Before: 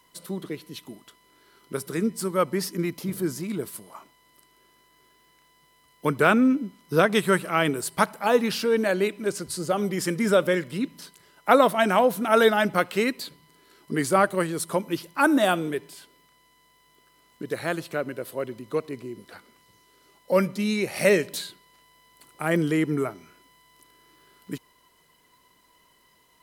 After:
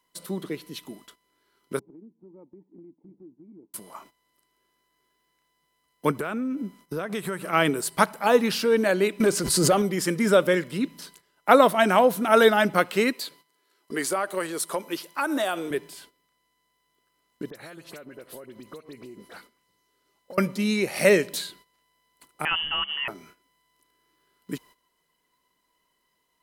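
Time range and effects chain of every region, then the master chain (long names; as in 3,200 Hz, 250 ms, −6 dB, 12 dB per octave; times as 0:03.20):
0:01.79–0:03.74: formant resonators in series u + downward compressor 4 to 1, threshold −49 dBFS
0:06.11–0:07.53: parametric band 3,800 Hz −3.5 dB 1.4 octaves + downward compressor 8 to 1, threshold −27 dBFS
0:09.20–0:09.82: leveller curve on the samples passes 1 + background raised ahead of every attack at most 33 dB per second
0:13.13–0:15.71: bass and treble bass −15 dB, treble +1 dB + downward compressor 5 to 1, threshold −23 dBFS
0:17.50–0:20.38: downward compressor 16 to 1, threshold −39 dBFS + all-pass dispersion highs, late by 53 ms, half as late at 2,800 Hz
0:22.45–0:23.08: one scale factor per block 5 bits + low-shelf EQ 490 Hz −10.5 dB + voice inversion scrambler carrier 3,200 Hz
whole clip: parametric band 99 Hz −9.5 dB 0.62 octaves; noise gate −52 dBFS, range −13 dB; level +1.5 dB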